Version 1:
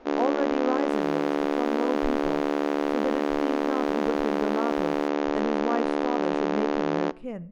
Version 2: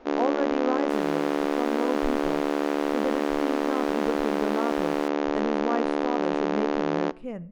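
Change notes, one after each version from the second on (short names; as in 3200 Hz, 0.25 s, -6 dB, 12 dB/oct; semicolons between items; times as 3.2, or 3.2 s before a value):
second sound +8.5 dB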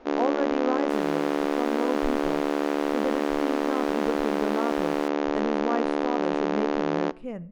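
none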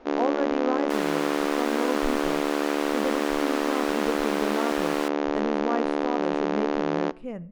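second sound +9.0 dB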